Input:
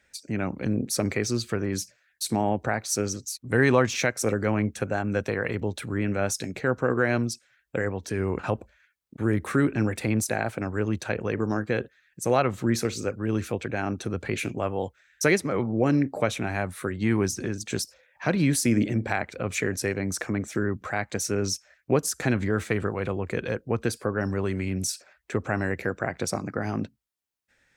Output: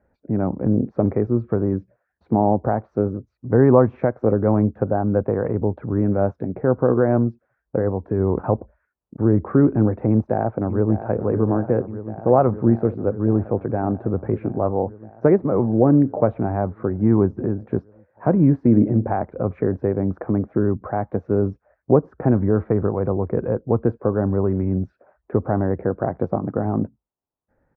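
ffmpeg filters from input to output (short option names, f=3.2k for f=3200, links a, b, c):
-filter_complex "[0:a]asplit=2[a][b];[b]afade=t=in:st=10.1:d=0.01,afade=t=out:st=11.16:d=0.01,aecho=0:1:590|1180|1770|2360|2950|3540|4130|4720|5310|5900|6490|7080:0.266073|0.212858|0.170286|0.136229|0.108983|0.0871866|0.0697493|0.0557994|0.0446396|0.0357116|0.0285693|0.0228555[c];[a][c]amix=inputs=2:normalize=0,lowpass=f=1k:w=0.5412,lowpass=f=1k:w=1.3066,volume=7.5dB"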